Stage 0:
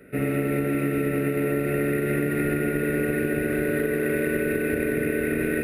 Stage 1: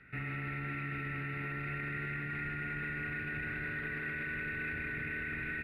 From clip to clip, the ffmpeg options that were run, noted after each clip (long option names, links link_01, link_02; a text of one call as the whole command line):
ffmpeg -i in.wav -af "firequalizer=gain_entry='entry(120,0);entry(200,-10);entry(540,-22);entry(830,0);entry(1300,0);entry(1900,2);entry(6100,-27)':delay=0.05:min_phase=1,alimiter=level_in=4dB:limit=-24dB:level=0:latency=1:release=14,volume=-4dB,equalizer=frequency=4800:width=1.2:gain=14,volume=-4dB" out.wav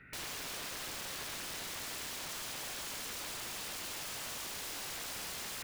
ffmpeg -i in.wav -af "aeval=exprs='(mod(89.1*val(0)+1,2)-1)/89.1':channel_layout=same,volume=1.5dB" out.wav